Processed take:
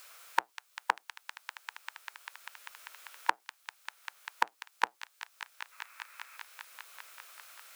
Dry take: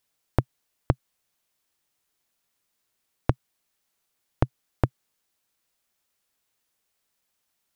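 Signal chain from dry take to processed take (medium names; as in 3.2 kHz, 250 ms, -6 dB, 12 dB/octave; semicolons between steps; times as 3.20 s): octave divider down 1 oct, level -3 dB; high-pass 580 Hz 24 dB/octave; formant shift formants +6 st; time-frequency box 5.72–6.37 s, 860–2700 Hz +9 dB; feedback echo behind a high-pass 197 ms, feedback 75%, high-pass 2.8 kHz, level -8 dB; three bands compressed up and down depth 70%; trim +8 dB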